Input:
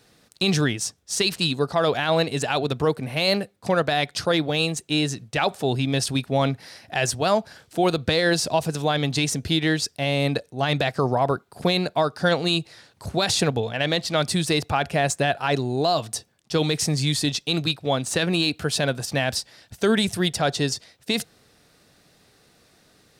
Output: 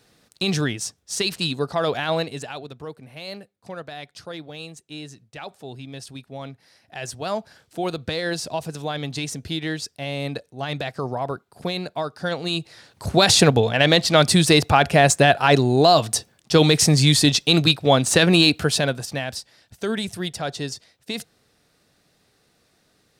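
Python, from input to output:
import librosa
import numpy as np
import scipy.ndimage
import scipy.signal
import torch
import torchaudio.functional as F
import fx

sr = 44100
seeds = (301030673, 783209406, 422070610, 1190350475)

y = fx.gain(x, sr, db=fx.line((2.11, -1.5), (2.71, -14.0), (6.64, -14.0), (7.36, -5.5), (12.34, -5.5), (13.19, 7.0), (18.5, 7.0), (19.29, -5.5)))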